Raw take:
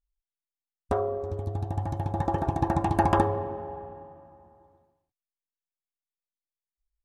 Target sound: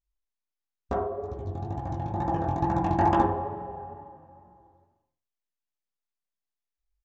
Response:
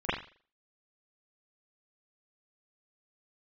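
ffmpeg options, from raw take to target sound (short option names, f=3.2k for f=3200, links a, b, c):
-filter_complex "[0:a]flanger=delay=15.5:depth=7.6:speed=2.2,asplit=2[a][b];[1:a]atrim=start_sample=2205,lowpass=2.2k[c];[b][c]afir=irnorm=-1:irlink=0,volume=-13.5dB[d];[a][d]amix=inputs=2:normalize=0,aresample=16000,aresample=44100"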